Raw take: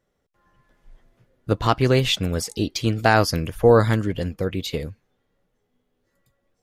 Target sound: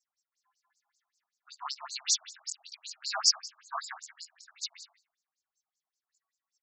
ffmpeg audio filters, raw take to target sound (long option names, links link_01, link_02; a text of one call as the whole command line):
ffmpeg -i in.wav -filter_complex "[0:a]afftfilt=real='re':imag='-im':win_size=2048:overlap=0.75,aexciter=amount=8.8:drive=7:freq=4700,asplit=2[link_01][link_02];[link_02]adelay=153,lowpass=frequency=2000:poles=1,volume=-10dB,asplit=2[link_03][link_04];[link_04]adelay=153,lowpass=frequency=2000:poles=1,volume=0.16[link_05];[link_03][link_05]amix=inputs=2:normalize=0[link_06];[link_01][link_06]amix=inputs=2:normalize=0,afftfilt=real='re*between(b*sr/1024,900*pow(5900/900,0.5+0.5*sin(2*PI*5.2*pts/sr))/1.41,900*pow(5900/900,0.5+0.5*sin(2*PI*5.2*pts/sr))*1.41)':imag='im*between(b*sr/1024,900*pow(5900/900,0.5+0.5*sin(2*PI*5.2*pts/sr))/1.41,900*pow(5900/900,0.5+0.5*sin(2*PI*5.2*pts/sr))*1.41)':win_size=1024:overlap=0.75,volume=-6dB" out.wav